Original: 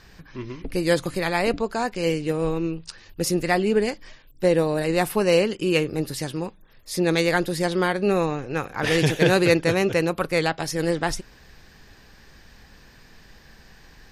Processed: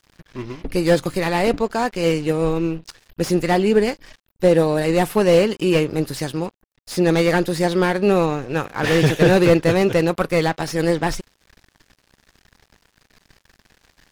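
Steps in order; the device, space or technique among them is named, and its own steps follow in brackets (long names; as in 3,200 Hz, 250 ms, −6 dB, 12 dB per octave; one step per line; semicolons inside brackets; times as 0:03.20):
early transistor amplifier (dead-zone distortion −45.5 dBFS; slew-rate limiting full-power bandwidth 130 Hz)
level +5 dB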